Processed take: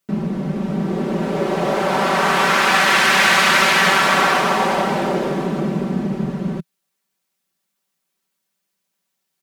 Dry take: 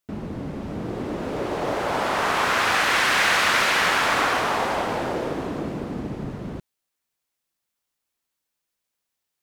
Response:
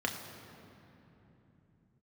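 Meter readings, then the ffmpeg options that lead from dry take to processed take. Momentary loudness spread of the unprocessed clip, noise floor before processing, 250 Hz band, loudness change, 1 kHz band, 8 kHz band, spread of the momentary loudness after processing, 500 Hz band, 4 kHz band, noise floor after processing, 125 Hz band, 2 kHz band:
15 LU, −82 dBFS, +9.0 dB, +6.0 dB, +6.0 dB, +5.5 dB, 11 LU, +6.5 dB, +5.5 dB, −76 dBFS, +9.0 dB, +5.5 dB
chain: -af "lowshelf=frequency=130:width_type=q:width=3:gain=-8,aecho=1:1:5.2:0.67,volume=4dB"

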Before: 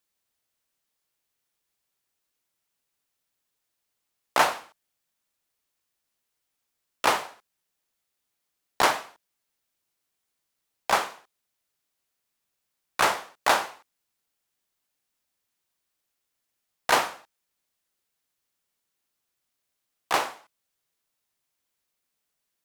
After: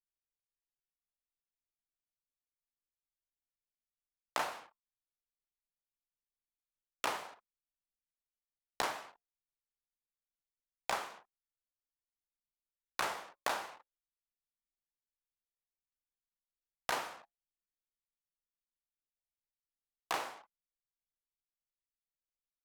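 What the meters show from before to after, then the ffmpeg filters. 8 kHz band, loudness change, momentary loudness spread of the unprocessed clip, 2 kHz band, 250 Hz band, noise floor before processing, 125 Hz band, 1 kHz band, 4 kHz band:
−12.5 dB, −13.5 dB, 14 LU, −13.5 dB, −13.5 dB, −81 dBFS, −13.0 dB, −13.5 dB, −12.5 dB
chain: -af "flanger=delay=6.1:depth=2.7:regen=-86:speed=0.25:shape=triangular,acompressor=threshold=-39dB:ratio=4,anlmdn=0.0000398,volume=4dB"

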